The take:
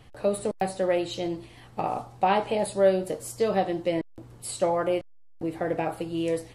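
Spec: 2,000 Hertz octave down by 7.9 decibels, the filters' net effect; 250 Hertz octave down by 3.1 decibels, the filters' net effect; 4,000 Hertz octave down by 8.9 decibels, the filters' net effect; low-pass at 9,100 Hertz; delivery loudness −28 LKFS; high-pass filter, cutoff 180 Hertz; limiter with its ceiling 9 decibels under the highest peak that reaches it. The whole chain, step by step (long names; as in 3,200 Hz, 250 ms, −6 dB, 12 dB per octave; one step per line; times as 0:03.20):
high-pass filter 180 Hz
low-pass filter 9,100 Hz
parametric band 250 Hz −3.5 dB
parametric band 2,000 Hz −8 dB
parametric band 4,000 Hz −8.5 dB
level +4 dB
brickwall limiter −17 dBFS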